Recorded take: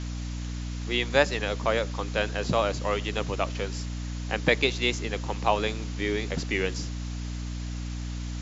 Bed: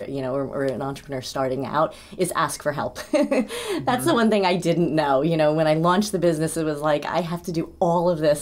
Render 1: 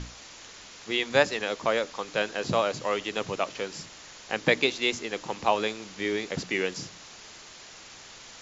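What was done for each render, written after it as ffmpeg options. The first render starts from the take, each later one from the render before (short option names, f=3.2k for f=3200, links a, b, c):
-af "bandreject=f=60:t=h:w=6,bandreject=f=120:t=h:w=6,bandreject=f=180:t=h:w=6,bandreject=f=240:t=h:w=6,bandreject=f=300:t=h:w=6"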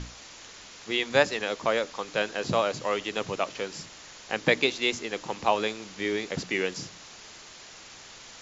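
-af anull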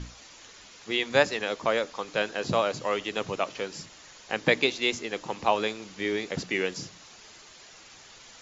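-af "afftdn=nr=6:nf=-48"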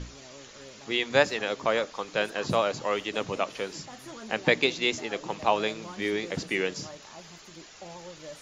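-filter_complex "[1:a]volume=-24.5dB[a];[0:a][a]amix=inputs=2:normalize=0"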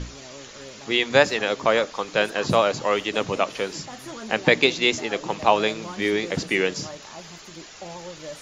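-af "volume=6dB,alimiter=limit=-1dB:level=0:latency=1"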